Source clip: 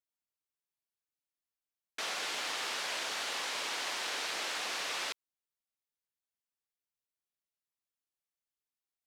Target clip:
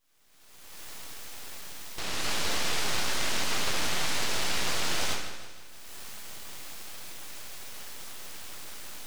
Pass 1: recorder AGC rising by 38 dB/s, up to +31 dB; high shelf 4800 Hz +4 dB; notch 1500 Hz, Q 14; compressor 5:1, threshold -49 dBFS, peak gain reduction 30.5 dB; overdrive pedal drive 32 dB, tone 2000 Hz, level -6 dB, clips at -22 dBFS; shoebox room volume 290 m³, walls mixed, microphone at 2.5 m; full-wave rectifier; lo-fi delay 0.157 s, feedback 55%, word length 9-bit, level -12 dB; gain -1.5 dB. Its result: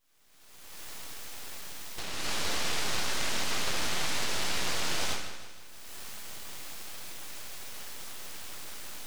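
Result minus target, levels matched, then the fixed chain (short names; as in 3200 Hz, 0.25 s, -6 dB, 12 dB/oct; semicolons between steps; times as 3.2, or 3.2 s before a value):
compressor: peak gain reduction +7.5 dB
recorder AGC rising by 38 dB/s, up to +31 dB; high shelf 4800 Hz +4 dB; notch 1500 Hz, Q 14; compressor 5:1, threshold -39.5 dBFS, peak gain reduction 23 dB; overdrive pedal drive 32 dB, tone 2000 Hz, level -6 dB, clips at -22 dBFS; shoebox room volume 290 m³, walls mixed, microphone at 2.5 m; full-wave rectifier; lo-fi delay 0.157 s, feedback 55%, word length 9-bit, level -12 dB; gain -1.5 dB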